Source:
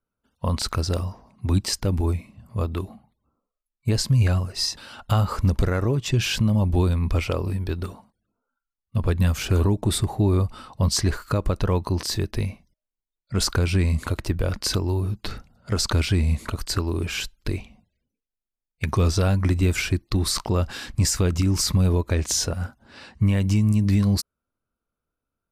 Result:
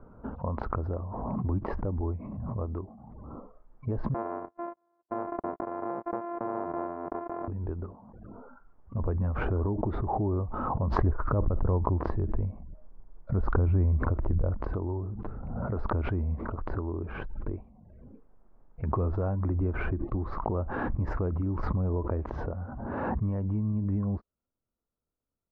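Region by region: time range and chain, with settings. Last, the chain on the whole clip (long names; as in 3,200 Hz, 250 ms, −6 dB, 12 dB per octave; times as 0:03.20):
0:04.14–0:07.48: samples sorted by size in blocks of 128 samples + band-pass filter 480–2,500 Hz + noise gate −35 dBFS, range −59 dB
0:11.01–0:14.73: low-shelf EQ 130 Hz +10 dB + saturating transformer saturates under 85 Hz
whole clip: low-pass filter 1,100 Hz 24 dB per octave; dynamic equaliser 140 Hz, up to −6 dB, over −33 dBFS, Q 0.9; background raised ahead of every attack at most 24 dB per second; level −6 dB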